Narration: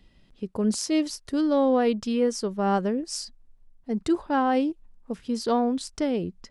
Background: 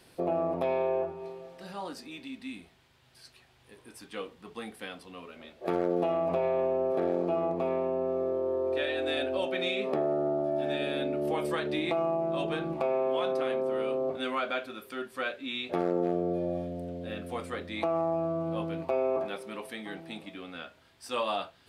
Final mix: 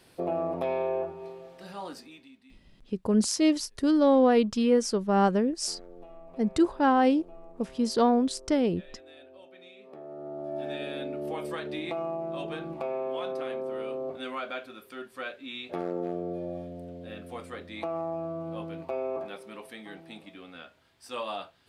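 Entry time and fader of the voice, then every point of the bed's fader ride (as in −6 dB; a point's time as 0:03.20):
2.50 s, +1.0 dB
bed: 0:01.96 −0.5 dB
0:02.57 −21 dB
0:09.79 −21 dB
0:10.57 −4 dB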